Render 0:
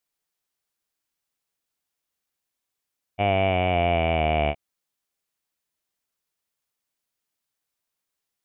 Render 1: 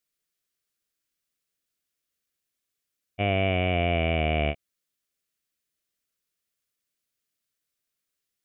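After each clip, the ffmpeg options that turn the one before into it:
-af "equalizer=f=870:w=3:g=-15"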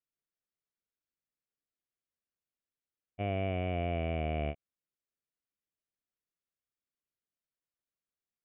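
-af "lowpass=f=1.2k:p=1,volume=-7.5dB"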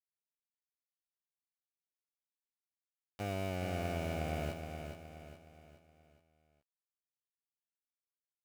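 -filter_complex "[0:a]aeval=exprs='val(0)*gte(abs(val(0)),0.0158)':c=same,asplit=2[a][b];[b]aecho=0:1:419|838|1257|1676|2095:0.447|0.192|0.0826|0.0355|0.0153[c];[a][c]amix=inputs=2:normalize=0,volume=-4.5dB"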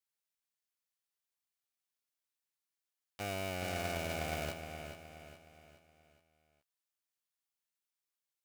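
-filter_complex "[0:a]tiltshelf=f=720:g=-4.5,asplit=2[a][b];[b]acrusher=bits=3:dc=4:mix=0:aa=0.000001,volume=-6dB[c];[a][c]amix=inputs=2:normalize=0"

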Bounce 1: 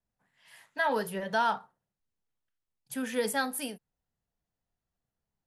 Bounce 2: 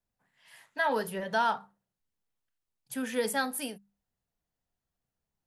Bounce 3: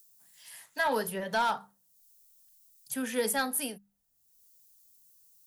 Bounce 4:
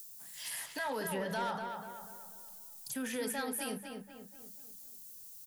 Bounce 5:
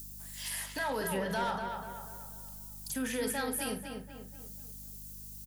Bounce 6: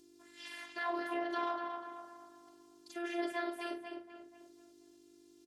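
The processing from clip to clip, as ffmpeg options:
-af "bandreject=f=50:t=h:w=6,bandreject=f=100:t=h:w=6,bandreject=f=150:t=h:w=6,bandreject=f=200:t=h:w=6"
-filter_complex "[0:a]highshelf=f=10k:g=10.5,acrossover=split=260|1300|4700[a][b][c][d];[d]acompressor=mode=upward:threshold=-41dB:ratio=2.5[e];[a][b][c][e]amix=inputs=4:normalize=0,asoftclip=type=hard:threshold=-21dB"
-filter_complex "[0:a]acompressor=threshold=-39dB:ratio=6,alimiter=level_in=16.5dB:limit=-24dB:level=0:latency=1:release=52,volume=-16.5dB,asplit=2[a][b];[b]adelay=244,lowpass=f=3k:p=1,volume=-5dB,asplit=2[c][d];[d]adelay=244,lowpass=f=3k:p=1,volume=0.47,asplit=2[e][f];[f]adelay=244,lowpass=f=3k:p=1,volume=0.47,asplit=2[g][h];[h]adelay=244,lowpass=f=3k:p=1,volume=0.47,asplit=2[i][j];[j]adelay=244,lowpass=f=3k:p=1,volume=0.47,asplit=2[k][l];[l]adelay=244,lowpass=f=3k:p=1,volume=0.47[m];[a][c][e][g][i][k][m]amix=inputs=7:normalize=0,volume=10.5dB"
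-filter_complex "[0:a]aeval=exprs='val(0)+0.00251*(sin(2*PI*50*n/s)+sin(2*PI*2*50*n/s)/2+sin(2*PI*3*50*n/s)/3+sin(2*PI*4*50*n/s)/4+sin(2*PI*5*50*n/s)/5)':c=same,asplit=2[a][b];[b]adelay=46,volume=-11dB[c];[a][c]amix=inputs=2:normalize=0,volume=2.5dB"
-af "aeval=exprs='val(0)*sin(2*PI*130*n/s)':c=same,afftfilt=real='hypot(re,im)*cos(PI*b)':imag='0':win_size=512:overlap=0.75,highpass=260,lowpass=3.4k,volume=3.5dB"

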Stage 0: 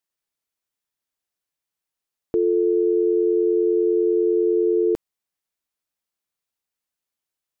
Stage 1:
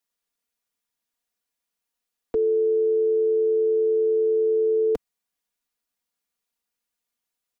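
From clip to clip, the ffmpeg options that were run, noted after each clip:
-filter_complex "[0:a]aecho=1:1:4.2:0.72,acrossover=split=120|430[a][b][c];[b]alimiter=level_in=3dB:limit=-24dB:level=0:latency=1:release=11,volume=-3dB[d];[a][d][c]amix=inputs=3:normalize=0"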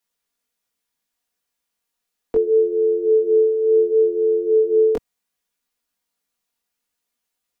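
-af "flanger=delay=16.5:depth=4.8:speed=0.7,volume=7.5dB"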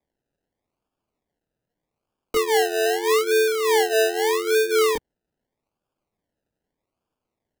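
-af "acrusher=samples=31:mix=1:aa=0.000001:lfo=1:lforange=18.6:lforate=0.81,volume=-3.5dB"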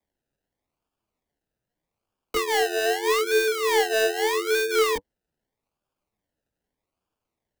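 -filter_complex "[0:a]acrossover=split=110|840|2700[a][b][c][d];[b]flanger=delay=8.6:depth=8.7:regen=26:speed=0.98:shape=triangular[e];[d]aeval=exprs='clip(val(0),-1,0.0355)':c=same[f];[a][e][c][f]amix=inputs=4:normalize=0"

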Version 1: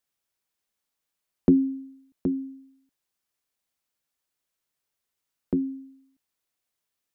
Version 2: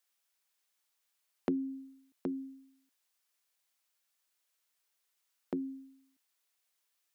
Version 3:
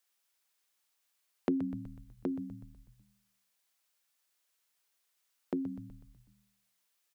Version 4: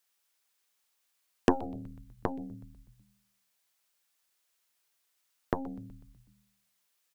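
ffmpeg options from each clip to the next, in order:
-af "highpass=f=990:p=1,acompressor=threshold=-37dB:ratio=2,volume=3.5dB"
-filter_complex "[0:a]asplit=7[a][b][c][d][e][f][g];[b]adelay=124,afreqshift=-78,volume=-11.5dB[h];[c]adelay=248,afreqshift=-156,volume=-16.4dB[i];[d]adelay=372,afreqshift=-234,volume=-21.3dB[j];[e]adelay=496,afreqshift=-312,volume=-26.1dB[k];[f]adelay=620,afreqshift=-390,volume=-31dB[l];[g]adelay=744,afreqshift=-468,volume=-35.9dB[m];[a][h][i][j][k][l][m]amix=inputs=7:normalize=0,volume=1.5dB"
-af "aeval=exprs='0.158*(cos(1*acos(clip(val(0)/0.158,-1,1)))-cos(1*PI/2))+0.00708*(cos(3*acos(clip(val(0)/0.158,-1,1)))-cos(3*PI/2))+0.02*(cos(4*acos(clip(val(0)/0.158,-1,1)))-cos(4*PI/2))+0.00794*(cos(5*acos(clip(val(0)/0.158,-1,1)))-cos(5*PI/2))+0.0355*(cos(7*acos(clip(val(0)/0.158,-1,1)))-cos(7*PI/2))':c=same,volume=8.5dB"

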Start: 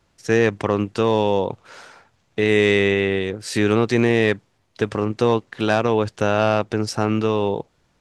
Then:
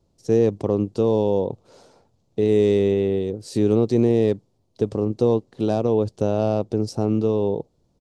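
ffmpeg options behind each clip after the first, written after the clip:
-af "firequalizer=gain_entry='entry(460,0);entry(1600,-23);entry(4200,-8)':delay=0.05:min_phase=1"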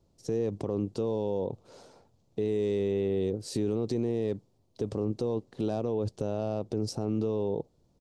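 -af "alimiter=limit=-18.5dB:level=0:latency=1:release=48,volume=-2dB"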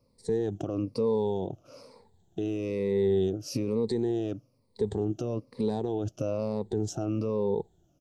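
-af "afftfilt=real='re*pow(10,16/40*sin(2*PI*(0.93*log(max(b,1)*sr/1024/100)/log(2)-(-1.1)*(pts-256)/sr)))':imag='im*pow(10,16/40*sin(2*PI*(0.93*log(max(b,1)*sr/1024/100)/log(2)-(-1.1)*(pts-256)/sr)))':win_size=1024:overlap=0.75,volume=-1.5dB"

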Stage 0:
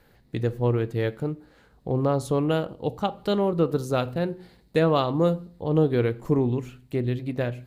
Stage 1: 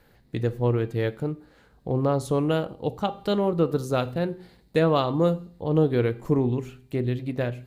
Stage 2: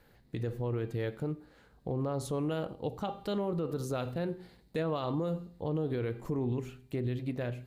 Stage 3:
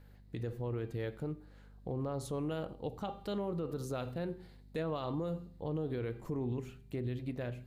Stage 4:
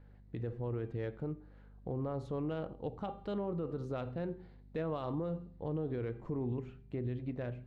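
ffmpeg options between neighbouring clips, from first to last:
-af "bandreject=f=397:t=h:w=4,bandreject=f=794:t=h:w=4,bandreject=f=1.191k:t=h:w=4,bandreject=f=1.588k:t=h:w=4,bandreject=f=1.985k:t=h:w=4,bandreject=f=2.382k:t=h:w=4,bandreject=f=2.779k:t=h:w=4,bandreject=f=3.176k:t=h:w=4,bandreject=f=3.573k:t=h:w=4,bandreject=f=3.97k:t=h:w=4,bandreject=f=4.367k:t=h:w=4,bandreject=f=4.764k:t=h:w=4,bandreject=f=5.161k:t=h:w=4,bandreject=f=5.558k:t=h:w=4,bandreject=f=5.955k:t=h:w=4,bandreject=f=6.352k:t=h:w=4,bandreject=f=6.749k:t=h:w=4,bandreject=f=7.146k:t=h:w=4,bandreject=f=7.543k:t=h:w=4,bandreject=f=7.94k:t=h:w=4,bandreject=f=8.337k:t=h:w=4,bandreject=f=8.734k:t=h:w=4,bandreject=f=9.131k:t=h:w=4,bandreject=f=9.528k:t=h:w=4,bandreject=f=9.925k:t=h:w=4,bandreject=f=10.322k:t=h:w=4,bandreject=f=10.719k:t=h:w=4,bandreject=f=11.116k:t=h:w=4,bandreject=f=11.513k:t=h:w=4,bandreject=f=11.91k:t=h:w=4,bandreject=f=12.307k:t=h:w=4,bandreject=f=12.704k:t=h:w=4,bandreject=f=13.101k:t=h:w=4"
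-af "alimiter=limit=-20dB:level=0:latency=1:release=52,volume=-4dB"
-af "aeval=exprs='val(0)+0.00251*(sin(2*PI*50*n/s)+sin(2*PI*2*50*n/s)/2+sin(2*PI*3*50*n/s)/3+sin(2*PI*4*50*n/s)/4+sin(2*PI*5*50*n/s)/5)':c=same,volume=-4dB"
-af "adynamicsmooth=sensitivity=2:basefreq=2.5k"

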